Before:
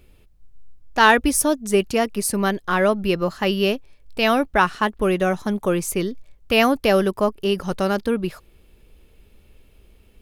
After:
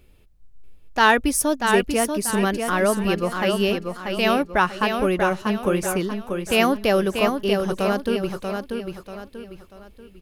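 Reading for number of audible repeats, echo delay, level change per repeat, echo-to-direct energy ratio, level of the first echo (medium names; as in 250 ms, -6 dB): 4, 638 ms, -8.5 dB, -5.0 dB, -5.5 dB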